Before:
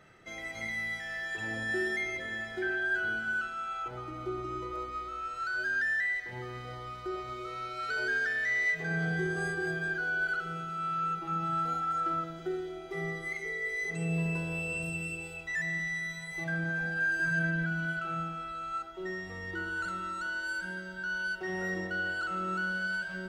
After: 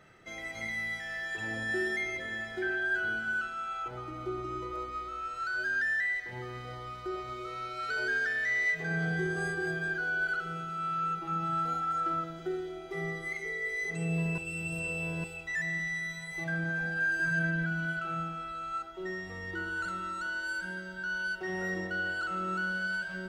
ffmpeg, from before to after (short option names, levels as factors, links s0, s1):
-filter_complex "[0:a]asplit=3[s0][s1][s2];[s0]atrim=end=14.382[s3];[s1]atrim=start=14.378:end=15.242,asetpts=PTS-STARTPTS,areverse[s4];[s2]atrim=start=15.238[s5];[s3][s4]acrossfade=d=0.004:c1=hsin:c2=hsin[s6];[s6][s5]acrossfade=d=0.004:c1=hsin:c2=hsin"